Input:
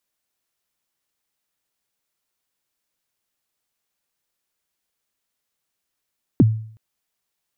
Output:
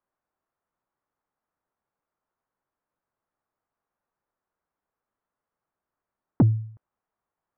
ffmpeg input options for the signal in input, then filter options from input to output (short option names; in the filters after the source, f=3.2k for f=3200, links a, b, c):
-f lavfi -i "aevalsrc='0.473*pow(10,-3*t/0.55)*sin(2*PI*(350*0.03/log(110/350)*(exp(log(110/350)*min(t,0.03)/0.03)-1)+110*max(t-0.03,0)))':d=0.37:s=44100"
-af "lowpass=f=1.2k:w=0.5412,lowpass=f=1.2k:w=1.3066,crystalizer=i=9.5:c=0,asoftclip=type=tanh:threshold=-11.5dB"